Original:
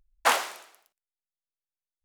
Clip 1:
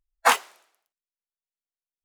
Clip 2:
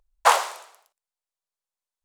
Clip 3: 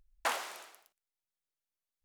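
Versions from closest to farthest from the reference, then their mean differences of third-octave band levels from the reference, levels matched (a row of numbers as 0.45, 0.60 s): 2, 3, 1; 3.5, 5.0, 9.0 dB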